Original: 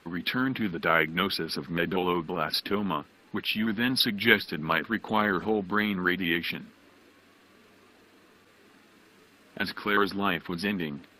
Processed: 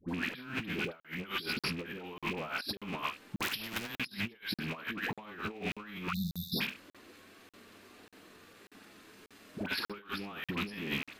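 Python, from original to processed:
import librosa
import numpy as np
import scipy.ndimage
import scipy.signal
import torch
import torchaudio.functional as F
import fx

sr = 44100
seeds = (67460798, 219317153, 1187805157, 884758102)

p1 = fx.rattle_buzz(x, sr, strikes_db=-41.0, level_db=-25.0)
p2 = fx.high_shelf(p1, sr, hz=3900.0, db=4.0)
p3 = fx.room_early_taps(p2, sr, ms=(44, 70), db=(-11.5, -12.5))
p4 = fx.level_steps(p3, sr, step_db=11)
p5 = p3 + (p4 * 10.0 ** (-2.5 / 20.0))
p6 = fx.brickwall_bandstop(p5, sr, low_hz=210.0, high_hz=3500.0, at=(6.06, 6.53))
p7 = fx.dispersion(p6, sr, late='highs', ms=86.0, hz=810.0)
p8 = fx.over_compress(p7, sr, threshold_db=-30.0, ratio=-0.5)
p9 = fx.buffer_crackle(p8, sr, first_s=1.0, period_s=0.59, block=2048, kind='zero')
p10 = fx.spectral_comp(p9, sr, ratio=2.0, at=(3.37, 3.99))
y = p10 * 10.0 ** (-7.5 / 20.0)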